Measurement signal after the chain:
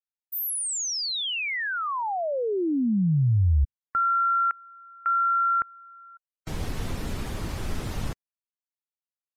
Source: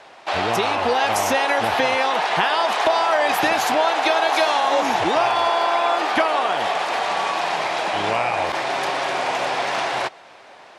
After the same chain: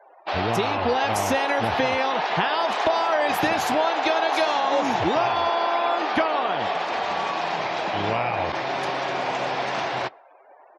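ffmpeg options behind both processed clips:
-af "afftdn=nr=36:nf=-42,lowshelf=f=270:g=10.5,aresample=32000,aresample=44100,volume=-4.5dB"

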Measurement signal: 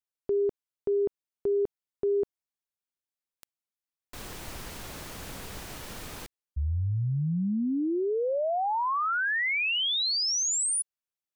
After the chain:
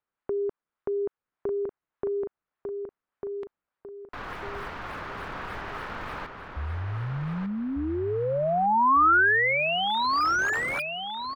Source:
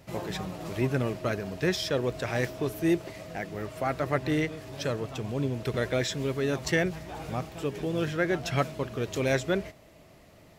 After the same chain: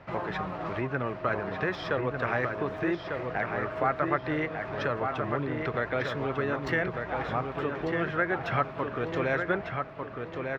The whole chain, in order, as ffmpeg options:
-filter_complex "[0:a]equalizer=f=8.8k:w=0.43:g=-13,acrossover=split=510|6100[a][b][c];[c]acrusher=samples=29:mix=1:aa=0.000001:lfo=1:lforange=46.4:lforate=3.4[d];[a][b][d]amix=inputs=3:normalize=0,acompressor=threshold=-30dB:ratio=3:attack=5.5:release=693:knee=6:detection=peak,equalizer=f=1.3k:w=0.73:g=13.5,asplit=2[e][f];[f]adelay=1198,lowpass=f=4.3k:p=1,volume=-5dB,asplit=2[g][h];[h]adelay=1198,lowpass=f=4.3k:p=1,volume=0.39,asplit=2[i][j];[j]adelay=1198,lowpass=f=4.3k:p=1,volume=0.39,asplit=2[k][l];[l]adelay=1198,lowpass=f=4.3k:p=1,volume=0.39,asplit=2[m][n];[n]adelay=1198,lowpass=f=4.3k:p=1,volume=0.39[o];[e][g][i][k][m][o]amix=inputs=6:normalize=0"

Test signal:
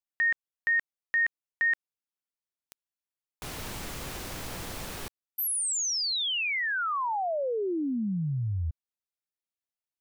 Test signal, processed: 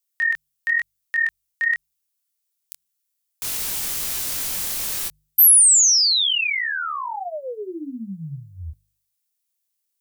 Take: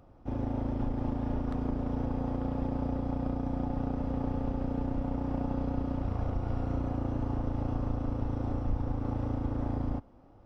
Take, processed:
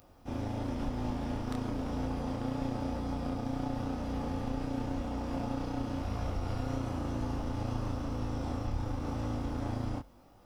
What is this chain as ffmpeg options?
-af "crystalizer=i=8:c=0,flanger=delay=19.5:depth=7.5:speed=0.97,bandreject=f=50.41:t=h:w=4,bandreject=f=100.82:t=h:w=4,bandreject=f=151.23:t=h:w=4"

